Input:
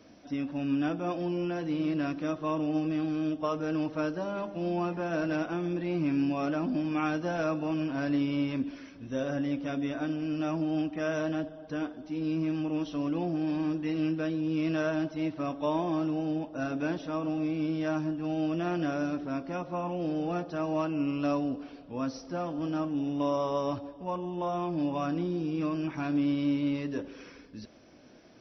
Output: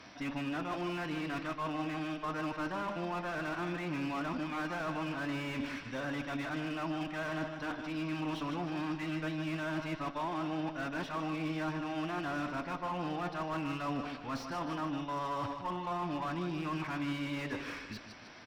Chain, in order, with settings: graphic EQ 250/500/1000/2000/4000 Hz -4/-6/+8/+8/+5 dB; reverse; compression 6:1, threshold -37 dBFS, peak gain reduction 15 dB; reverse; time stretch by phase-locked vocoder 0.65×; Chebyshev shaper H 8 -24 dB, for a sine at -27 dBFS; on a send: feedback delay 153 ms, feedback 41%, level -10 dB; on the sum: slew-rate limiter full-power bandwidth 15 Hz; trim +3.5 dB

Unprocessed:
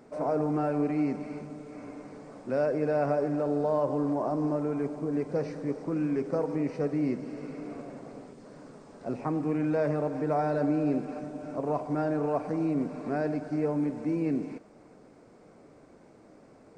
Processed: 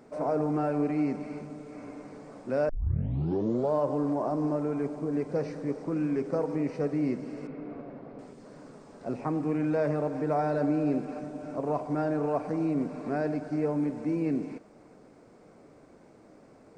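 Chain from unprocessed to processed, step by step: 2.69 s: tape start 1.04 s; 7.47–8.19 s: distance through air 350 m

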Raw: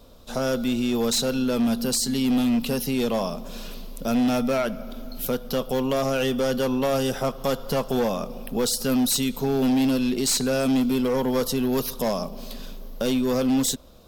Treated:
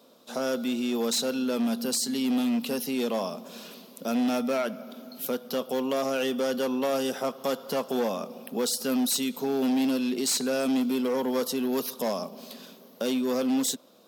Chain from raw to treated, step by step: high-pass 200 Hz 24 dB/octave; trim -3.5 dB

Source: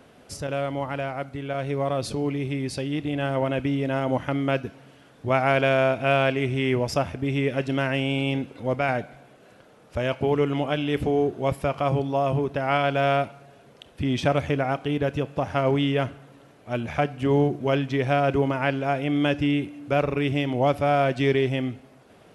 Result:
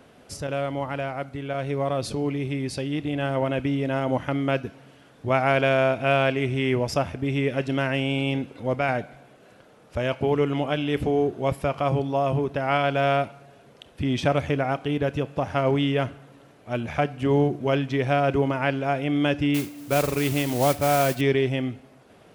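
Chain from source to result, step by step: 19.54–21.21 s: modulation noise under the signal 12 dB

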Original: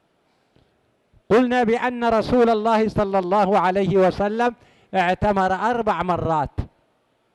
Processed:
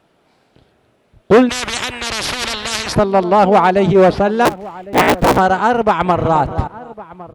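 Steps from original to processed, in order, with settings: 4.45–5.39 s: cycle switcher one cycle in 3, inverted; echo from a far wall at 190 m, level -18 dB; 1.49–2.95 s: spectrum-flattening compressor 10:1; 5.97–6.41 s: echo throw 260 ms, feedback 20%, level -11.5 dB; trim +7 dB

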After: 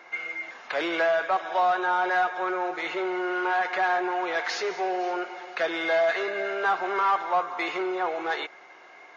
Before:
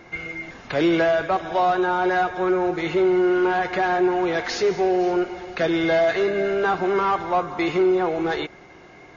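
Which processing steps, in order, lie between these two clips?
high-pass 790 Hz 12 dB/octave; treble shelf 2.9 kHz -8 dB; in parallel at -10 dB: saturation -25.5 dBFS, distortion -11 dB

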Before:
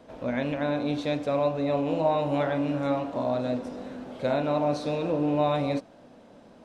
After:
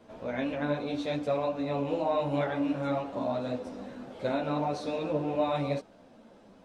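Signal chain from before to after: three-phase chorus

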